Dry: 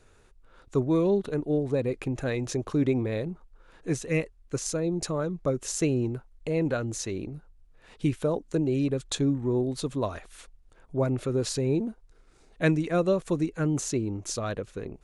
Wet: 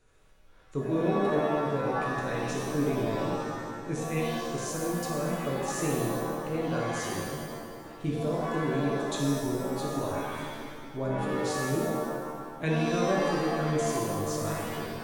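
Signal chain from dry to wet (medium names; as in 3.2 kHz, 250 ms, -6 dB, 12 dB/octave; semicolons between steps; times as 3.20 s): on a send: filtered feedback delay 225 ms, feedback 75%, low-pass 3.7 kHz, level -14 dB; on the sum: pitch-shifted reverb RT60 1.3 s, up +7 st, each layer -2 dB, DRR -2.5 dB; trim -8.5 dB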